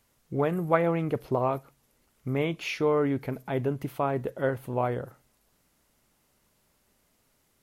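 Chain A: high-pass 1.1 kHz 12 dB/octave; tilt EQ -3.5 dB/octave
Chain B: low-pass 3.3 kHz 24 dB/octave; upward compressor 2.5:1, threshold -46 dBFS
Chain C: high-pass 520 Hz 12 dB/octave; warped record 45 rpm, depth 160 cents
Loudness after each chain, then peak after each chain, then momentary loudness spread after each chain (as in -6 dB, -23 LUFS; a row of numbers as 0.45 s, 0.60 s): -38.0 LUFS, -29.0 LUFS, -32.5 LUFS; -14.0 dBFS, -7.5 dBFS, -9.0 dBFS; 13 LU, 9 LU, 11 LU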